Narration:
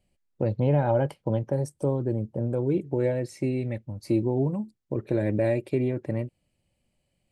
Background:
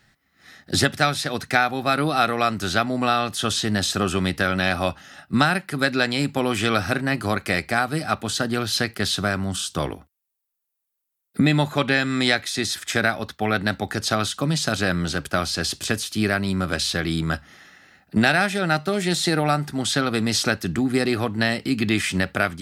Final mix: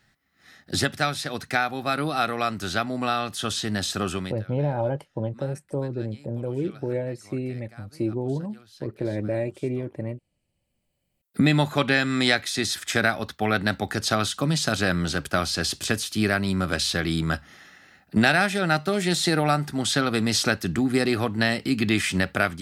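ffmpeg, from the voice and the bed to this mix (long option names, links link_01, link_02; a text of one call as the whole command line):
ffmpeg -i stem1.wav -i stem2.wav -filter_complex "[0:a]adelay=3900,volume=-2.5dB[link_01];[1:a]volume=22.5dB,afade=type=out:start_time=4.11:duration=0.29:silence=0.0668344,afade=type=in:start_time=10.32:duration=1.16:silence=0.0446684[link_02];[link_01][link_02]amix=inputs=2:normalize=0" out.wav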